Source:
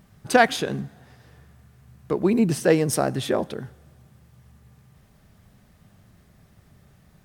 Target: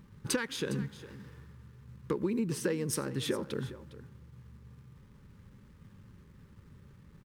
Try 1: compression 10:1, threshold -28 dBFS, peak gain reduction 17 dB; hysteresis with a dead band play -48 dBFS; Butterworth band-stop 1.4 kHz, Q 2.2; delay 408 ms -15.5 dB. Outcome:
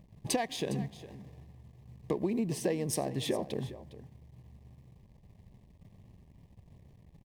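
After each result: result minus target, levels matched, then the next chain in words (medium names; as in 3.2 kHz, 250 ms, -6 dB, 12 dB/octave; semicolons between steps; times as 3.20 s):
hysteresis with a dead band: distortion +8 dB; 1 kHz band +5.0 dB
compression 10:1, threshold -28 dBFS, peak gain reduction 17 dB; hysteresis with a dead band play -56.5 dBFS; Butterworth band-stop 1.4 kHz, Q 2.2; delay 408 ms -15.5 dB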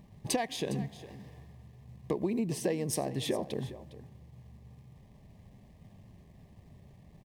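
1 kHz band +5.0 dB
compression 10:1, threshold -28 dBFS, peak gain reduction 17 dB; hysteresis with a dead band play -56.5 dBFS; Butterworth band-stop 690 Hz, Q 2.2; delay 408 ms -15.5 dB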